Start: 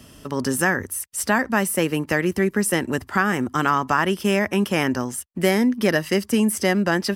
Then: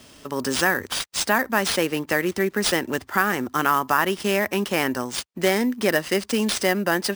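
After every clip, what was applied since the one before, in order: tone controls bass -8 dB, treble +2 dB; sample-rate reducer 14000 Hz, jitter 0%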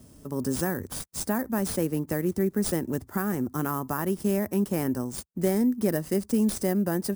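EQ curve 150 Hz 0 dB, 3000 Hz -25 dB, 10000 Hz -7 dB; gain +4 dB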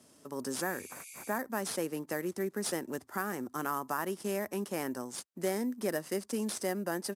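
downsampling 32000 Hz; weighting filter A; spectral repair 0.65–1.32, 2100–12000 Hz after; gain -2 dB

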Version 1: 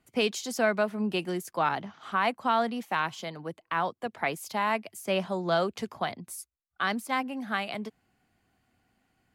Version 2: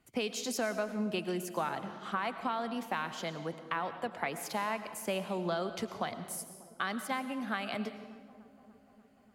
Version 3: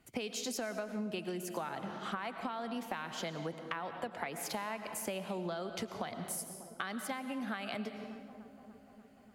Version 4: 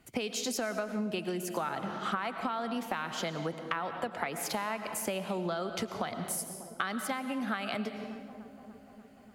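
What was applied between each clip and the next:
compressor 5:1, threshold -31 dBFS, peak gain reduction 10 dB; dark delay 0.295 s, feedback 70%, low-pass 760 Hz, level -17 dB; on a send at -10.5 dB: reverb RT60 1.2 s, pre-delay 70 ms
bell 1100 Hz -2.5 dB 0.34 oct; compressor, threshold -39 dBFS, peak gain reduction 10 dB; gain +3.5 dB
dynamic EQ 1300 Hz, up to +5 dB, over -58 dBFS, Q 6.5; gain +4.5 dB

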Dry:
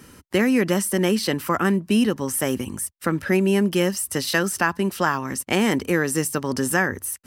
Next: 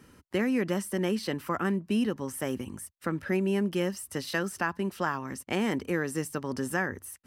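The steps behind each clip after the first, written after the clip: high shelf 4100 Hz -7 dB; gain -8 dB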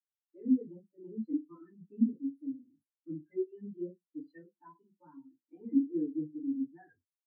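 FDN reverb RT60 0.44 s, low-frequency decay 1.1×, high-frequency decay 0.95×, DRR -5.5 dB; added harmonics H 5 -16 dB, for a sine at -13.5 dBFS; spectral expander 4:1; gain -4.5 dB

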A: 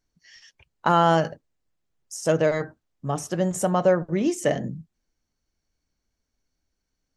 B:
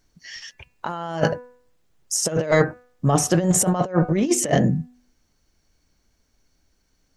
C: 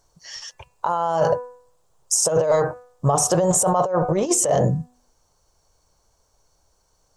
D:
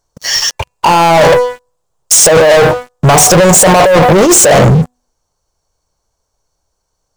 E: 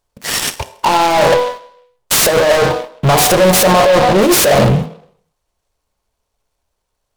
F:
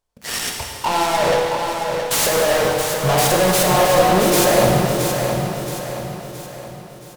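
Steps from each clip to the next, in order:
de-hum 246.9 Hz, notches 11; negative-ratio compressor -26 dBFS, ratio -0.5; gain +7.5 dB
graphic EQ 125/250/500/1000/2000/8000 Hz +4/-11/+8/+12/-9/+9 dB; limiter -9.5 dBFS, peak gain reduction 11 dB
sample leveller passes 5; gain +6.5 dB
on a send at -10 dB: reverb RT60 0.65 s, pre-delay 3 ms; on the sum: noise-modulated delay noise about 2400 Hz, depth 0.041 ms; gain -5 dB
on a send: feedback echo 0.672 s, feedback 46%, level -7 dB; on the sum: plate-style reverb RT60 2.9 s, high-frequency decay 0.85×, DRR 1 dB; gain -8 dB

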